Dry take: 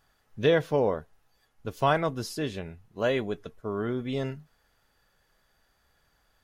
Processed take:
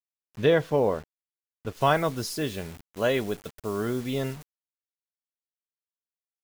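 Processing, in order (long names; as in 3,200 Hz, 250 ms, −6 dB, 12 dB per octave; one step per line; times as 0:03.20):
bit-depth reduction 8 bits, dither none
high-shelf EQ 5,100 Hz −6 dB, from 0:01.81 +5 dB
level +1.5 dB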